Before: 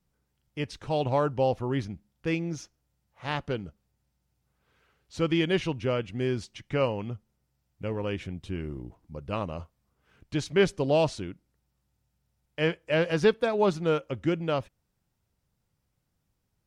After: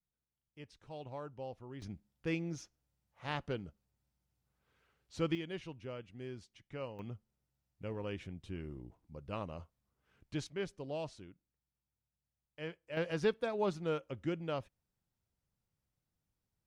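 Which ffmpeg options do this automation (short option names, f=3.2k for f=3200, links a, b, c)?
-af "asetnsamples=n=441:p=0,asendcmd='1.82 volume volume -7.5dB;5.35 volume volume -17dB;6.99 volume volume -9.5dB;10.47 volume volume -17dB;12.97 volume volume -10dB',volume=-19.5dB"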